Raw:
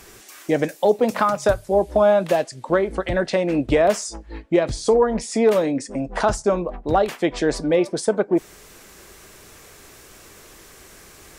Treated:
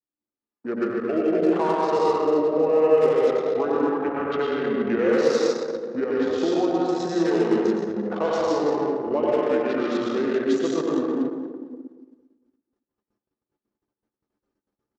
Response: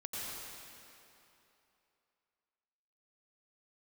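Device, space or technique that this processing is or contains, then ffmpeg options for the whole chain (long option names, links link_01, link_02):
slowed and reverbed: -filter_complex "[0:a]asetrate=33516,aresample=44100[link_01];[1:a]atrim=start_sample=2205[link_02];[link_01][link_02]afir=irnorm=-1:irlink=0,anlmdn=398,agate=range=-15dB:threshold=-54dB:ratio=16:detection=peak,highpass=290,asplit=2[link_03][link_04];[link_04]adelay=229,lowpass=frequency=4400:poles=1,volume=-16dB,asplit=2[link_05][link_06];[link_06]adelay=229,lowpass=frequency=4400:poles=1,volume=0.39,asplit=2[link_07][link_08];[link_08]adelay=229,lowpass=frequency=4400:poles=1,volume=0.39[link_09];[link_03][link_05][link_07][link_09]amix=inputs=4:normalize=0,volume=-2dB"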